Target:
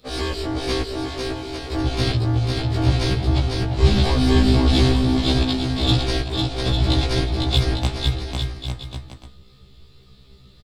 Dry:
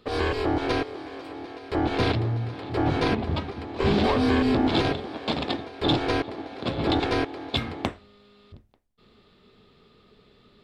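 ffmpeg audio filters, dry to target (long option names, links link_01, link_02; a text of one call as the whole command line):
ffmpeg -i in.wav -filter_complex "[0:a]acrossover=split=270|3400[link_01][link_02][link_03];[link_01]asubboost=boost=5:cutoff=120[link_04];[link_03]acontrast=64[link_05];[link_04][link_02][link_05]amix=inputs=3:normalize=0,aeval=exprs='0.531*(cos(1*acos(clip(val(0)/0.531,-1,1)))-cos(1*PI/2))+0.0075*(cos(7*acos(clip(val(0)/0.531,-1,1)))-cos(7*PI/2))':channel_layout=same,bass=frequency=250:gain=6,treble=frequency=4000:gain=9,asplit=2[link_06][link_07];[link_07]aecho=0:1:500|850|1095|1266|1387:0.631|0.398|0.251|0.158|0.1[link_08];[link_06][link_08]amix=inputs=2:normalize=0,afftfilt=real='re*1.73*eq(mod(b,3),0)':imag='im*1.73*eq(mod(b,3),0)':win_size=2048:overlap=0.75" out.wav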